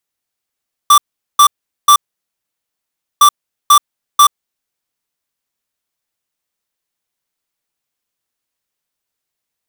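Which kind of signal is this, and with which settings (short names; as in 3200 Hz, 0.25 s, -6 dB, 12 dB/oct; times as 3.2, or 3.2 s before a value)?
beep pattern square 1170 Hz, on 0.08 s, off 0.41 s, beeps 3, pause 1.25 s, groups 2, -5.5 dBFS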